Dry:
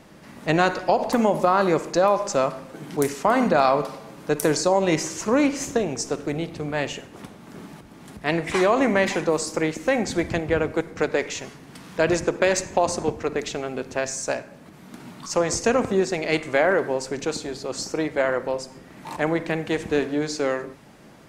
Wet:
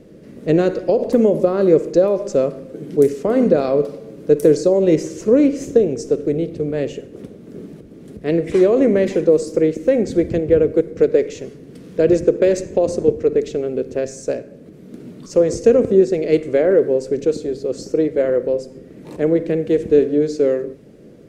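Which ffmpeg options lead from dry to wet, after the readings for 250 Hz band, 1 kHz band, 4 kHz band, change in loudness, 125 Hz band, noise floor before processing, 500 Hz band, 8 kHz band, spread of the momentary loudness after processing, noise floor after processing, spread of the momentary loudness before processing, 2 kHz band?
+7.0 dB, -9.0 dB, no reading, +6.0 dB, +4.5 dB, -47 dBFS, +8.0 dB, -6.5 dB, 12 LU, -41 dBFS, 14 LU, -8.0 dB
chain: -af "lowshelf=f=640:t=q:w=3:g=10.5,volume=0.473"

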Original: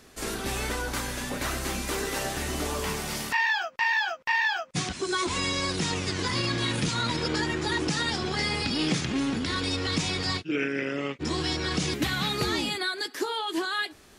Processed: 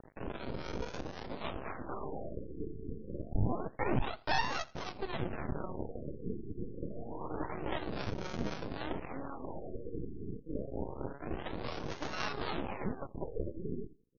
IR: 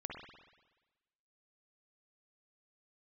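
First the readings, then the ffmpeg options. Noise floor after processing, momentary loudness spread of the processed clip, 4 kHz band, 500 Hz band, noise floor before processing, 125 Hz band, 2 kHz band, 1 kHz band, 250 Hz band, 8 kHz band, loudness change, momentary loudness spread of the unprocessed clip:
-54 dBFS, 9 LU, -18.5 dB, -7.5 dB, -53 dBFS, -8.0 dB, -16.5 dB, -9.0 dB, -10.0 dB, -24.5 dB, -12.0 dB, 6 LU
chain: -filter_complex "[0:a]lowpass=9000,bass=f=250:g=-8,treble=f=4000:g=-6,bandreject=f=69.71:t=h:w=4,bandreject=f=139.42:t=h:w=4,bandreject=f=209.13:t=h:w=4,bandreject=f=278.84:t=h:w=4,bandreject=f=348.55:t=h:w=4,bandreject=f=418.26:t=h:w=4,bandreject=f=487.97:t=h:w=4,bandreject=f=557.68:t=h:w=4,bandreject=f=627.39:t=h:w=4,bandreject=f=697.1:t=h:w=4,bandreject=f=766.81:t=h:w=4,bandreject=f=836.52:t=h:w=4,bandreject=f=906.23:t=h:w=4,bandreject=f=975.94:t=h:w=4,acrossover=split=330[s0][s1];[s0]acompressor=threshold=0.00708:ratio=6[s2];[s2][s1]amix=inputs=2:normalize=0,acrusher=samples=32:mix=1:aa=0.000001:lfo=1:lforange=32:lforate=0.39,aeval=exprs='sgn(val(0))*max(abs(val(0))-0.00237,0)':c=same,acompressor=mode=upward:threshold=0.0251:ratio=2.5,acrossover=split=570[s3][s4];[s3]aeval=exprs='val(0)*(1-0.7/2+0.7/2*cos(2*PI*3.8*n/s))':c=same[s5];[s4]aeval=exprs='val(0)*(1-0.7/2-0.7/2*cos(2*PI*3.8*n/s))':c=same[s6];[s5][s6]amix=inputs=2:normalize=0,aeval=exprs='max(val(0),0)':c=same,aecho=1:1:83|166:0.0794|0.0254,afftfilt=real='re*lt(b*sr/1024,460*pow(6800/460,0.5+0.5*sin(2*PI*0.27*pts/sr)))':imag='im*lt(b*sr/1024,460*pow(6800/460,0.5+0.5*sin(2*PI*0.27*pts/sr)))':win_size=1024:overlap=0.75,volume=1.19"

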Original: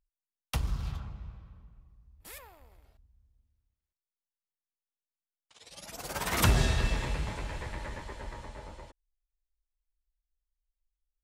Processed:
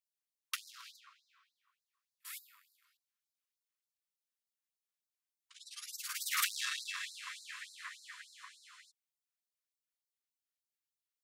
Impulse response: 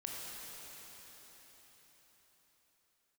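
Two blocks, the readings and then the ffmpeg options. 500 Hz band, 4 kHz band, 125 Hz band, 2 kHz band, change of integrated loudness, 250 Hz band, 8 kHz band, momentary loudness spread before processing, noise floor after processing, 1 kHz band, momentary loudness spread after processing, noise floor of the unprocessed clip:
under -40 dB, -2.0 dB, under -40 dB, -4.0 dB, -7.0 dB, under -40 dB, -1.5 dB, 22 LU, under -85 dBFS, -10.5 dB, 21 LU, under -85 dBFS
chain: -af "asoftclip=type=tanh:threshold=0.0668,afftfilt=real='re*gte(b*sr/1024,950*pow(3900/950,0.5+0.5*sin(2*PI*3.4*pts/sr)))':imag='im*gte(b*sr/1024,950*pow(3900/950,0.5+0.5*sin(2*PI*3.4*pts/sr)))':win_size=1024:overlap=0.75,volume=1.12"

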